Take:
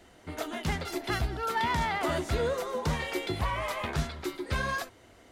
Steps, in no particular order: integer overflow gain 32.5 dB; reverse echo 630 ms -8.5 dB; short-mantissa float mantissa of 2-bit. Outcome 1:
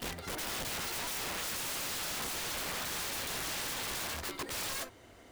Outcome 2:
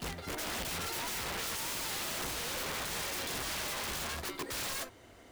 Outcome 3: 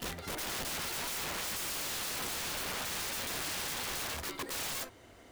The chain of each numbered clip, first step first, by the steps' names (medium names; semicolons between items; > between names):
short-mantissa float > reverse echo > integer overflow; reverse echo > short-mantissa float > integer overflow; reverse echo > integer overflow > short-mantissa float